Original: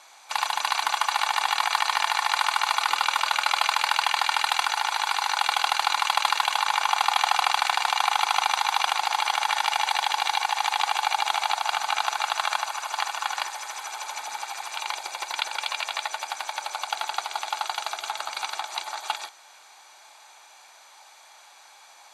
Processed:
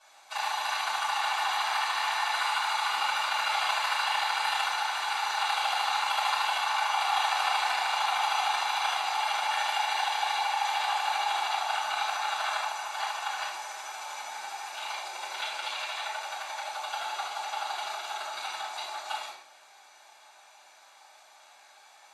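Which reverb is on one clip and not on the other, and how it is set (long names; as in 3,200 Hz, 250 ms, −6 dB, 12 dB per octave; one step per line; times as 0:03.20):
rectangular room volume 150 cubic metres, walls mixed, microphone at 5.2 metres
level −19 dB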